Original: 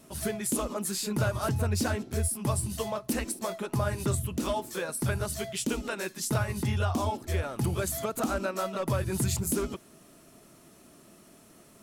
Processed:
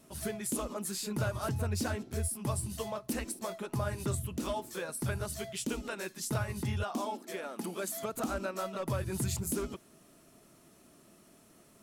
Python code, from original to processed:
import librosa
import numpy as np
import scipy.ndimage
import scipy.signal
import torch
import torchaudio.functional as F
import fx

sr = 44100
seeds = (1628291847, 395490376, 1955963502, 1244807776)

y = fx.brickwall_highpass(x, sr, low_hz=170.0, at=(6.83, 8.03))
y = y * 10.0 ** (-5.0 / 20.0)